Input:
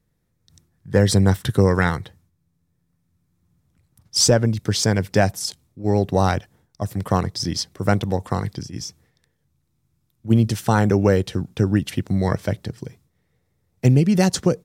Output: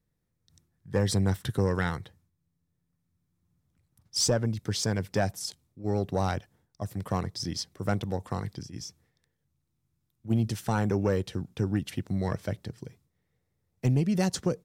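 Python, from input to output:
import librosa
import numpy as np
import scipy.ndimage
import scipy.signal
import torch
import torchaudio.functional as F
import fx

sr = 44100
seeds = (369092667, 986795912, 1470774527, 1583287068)

y = 10.0 ** (-6.0 / 20.0) * np.tanh(x / 10.0 ** (-6.0 / 20.0))
y = y * 10.0 ** (-8.5 / 20.0)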